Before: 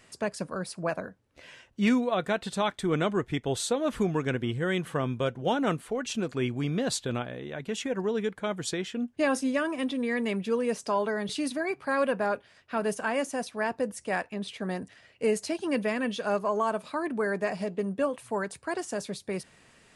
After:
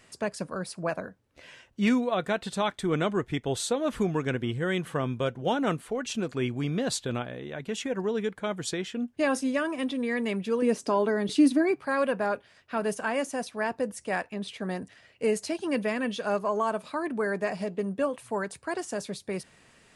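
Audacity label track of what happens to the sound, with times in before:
10.620000	11.760000	peaking EQ 300 Hz +12 dB

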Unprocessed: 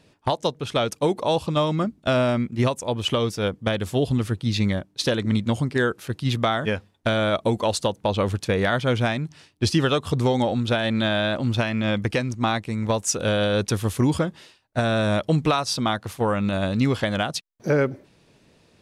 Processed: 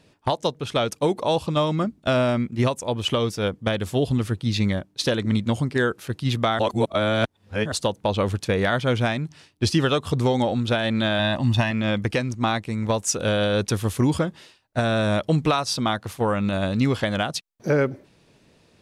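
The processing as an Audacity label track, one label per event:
6.590000	7.720000	reverse
11.190000	11.710000	comb 1.1 ms, depth 69%

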